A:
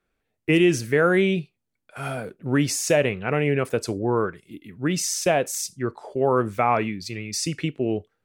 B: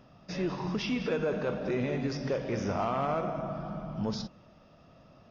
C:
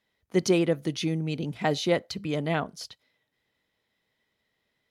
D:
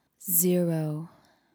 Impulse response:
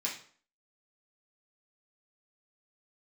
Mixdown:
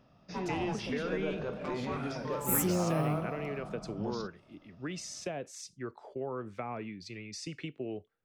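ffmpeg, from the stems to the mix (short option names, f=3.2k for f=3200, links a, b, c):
-filter_complex "[0:a]lowpass=5.5k,acrossover=split=120|410[a][b][c];[a]acompressor=threshold=-47dB:ratio=4[d];[b]acompressor=threshold=-29dB:ratio=4[e];[c]acompressor=threshold=-29dB:ratio=4[f];[d][e][f]amix=inputs=3:normalize=0,volume=-10.5dB[g];[1:a]volume=-6.5dB[h];[2:a]highshelf=f=2.1k:g=-11.5,asoftclip=type=tanh:threshold=-23.5dB,aeval=exprs='val(0)*sin(2*PI*440*n/s+440*0.7/0.44*sin(2*PI*0.44*n/s))':c=same,volume=-9.5dB,asplit=2[i][j];[j]volume=-4dB[k];[3:a]acompressor=threshold=-26dB:ratio=6,adelay=2200,volume=-1dB[l];[4:a]atrim=start_sample=2205[m];[k][m]afir=irnorm=-1:irlink=0[n];[g][h][i][l][n]amix=inputs=5:normalize=0"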